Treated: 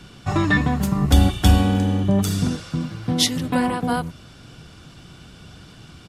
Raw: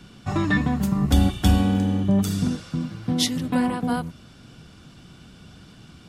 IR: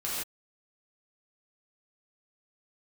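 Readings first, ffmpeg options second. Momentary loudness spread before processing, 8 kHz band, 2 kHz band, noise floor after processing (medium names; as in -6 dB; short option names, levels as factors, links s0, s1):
9 LU, +4.5 dB, +4.5 dB, -45 dBFS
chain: -af "equalizer=f=220:t=o:w=0.67:g=-5.5,aresample=32000,aresample=44100,volume=1.68"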